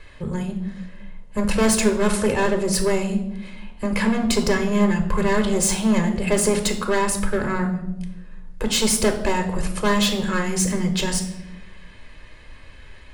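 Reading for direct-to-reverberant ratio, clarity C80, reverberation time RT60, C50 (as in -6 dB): 5.0 dB, 12.5 dB, 0.95 s, 9.5 dB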